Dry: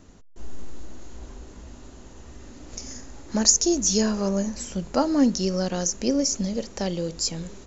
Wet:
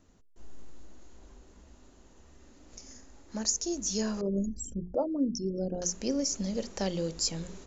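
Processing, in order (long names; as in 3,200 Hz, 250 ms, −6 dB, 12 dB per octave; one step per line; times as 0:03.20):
0:04.21–0:05.82: spectral envelope exaggerated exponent 3
speech leveller within 4 dB 0.5 s
mains-hum notches 60/120/180/240/300/360/420 Hz
level −7.5 dB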